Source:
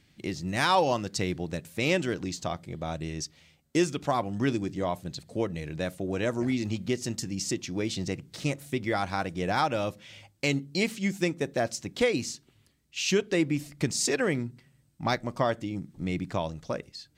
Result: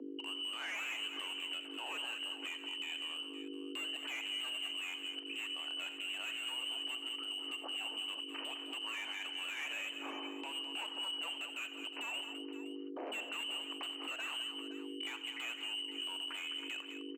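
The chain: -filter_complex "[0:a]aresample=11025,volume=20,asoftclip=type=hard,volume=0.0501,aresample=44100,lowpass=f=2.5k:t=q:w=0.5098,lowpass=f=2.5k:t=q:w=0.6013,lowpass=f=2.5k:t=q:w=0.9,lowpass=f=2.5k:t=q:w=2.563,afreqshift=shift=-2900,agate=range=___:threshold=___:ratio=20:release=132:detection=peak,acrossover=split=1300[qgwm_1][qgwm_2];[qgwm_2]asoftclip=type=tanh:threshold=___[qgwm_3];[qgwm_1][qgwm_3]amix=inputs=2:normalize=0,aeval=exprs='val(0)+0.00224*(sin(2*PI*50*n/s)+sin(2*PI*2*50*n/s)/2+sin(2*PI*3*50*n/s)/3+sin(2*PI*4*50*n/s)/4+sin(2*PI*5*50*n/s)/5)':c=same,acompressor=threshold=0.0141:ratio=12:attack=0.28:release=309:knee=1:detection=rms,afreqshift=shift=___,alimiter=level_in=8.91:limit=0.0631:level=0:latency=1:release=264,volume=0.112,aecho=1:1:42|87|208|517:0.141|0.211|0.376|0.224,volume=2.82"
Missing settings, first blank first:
0.0316, 0.00158, 0.0237, 230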